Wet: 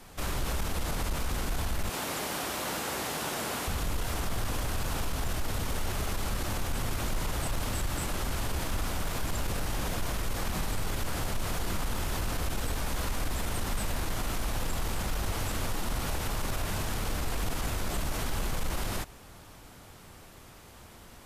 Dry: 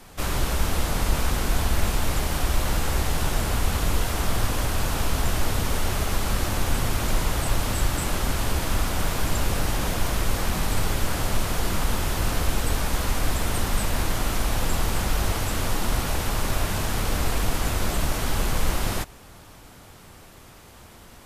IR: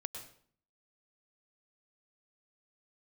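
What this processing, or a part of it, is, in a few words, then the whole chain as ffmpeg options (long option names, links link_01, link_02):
soft clipper into limiter: -filter_complex "[0:a]asettb=1/sr,asplit=3[link_01][link_02][link_03];[link_01]atrim=end=1.894[link_04];[link_02]atrim=start=1.89:end=3.68,asetpts=PTS-STARTPTS,afade=type=in:duration=0.004:curve=qsin,afade=type=out:start_time=1.786:duration=0.004:curve=qsin,highpass=230[link_05];[link_03]atrim=start=3.676[link_06];[link_04][link_05]acrossfade=duration=0.004:curve1=hsin:curve2=qsin[link_07];[link_07][link_06]acrossfade=duration=0.004:curve1=qsin:curve2=hsin,asoftclip=type=tanh:threshold=-13dB,alimiter=limit=-19.5dB:level=0:latency=1:release=59,volume=-3.5dB"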